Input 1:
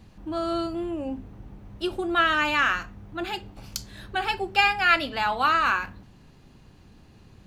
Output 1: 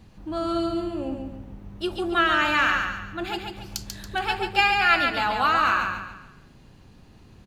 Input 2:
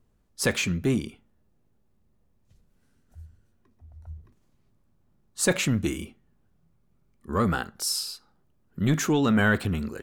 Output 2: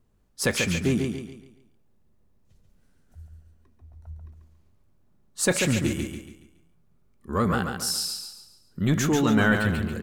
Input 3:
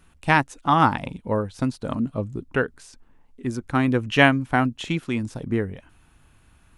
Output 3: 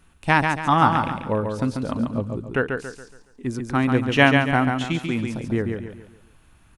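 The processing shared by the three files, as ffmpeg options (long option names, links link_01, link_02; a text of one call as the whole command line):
ffmpeg -i in.wav -af "aecho=1:1:140|280|420|560|700:0.562|0.214|0.0812|0.0309|0.0117" out.wav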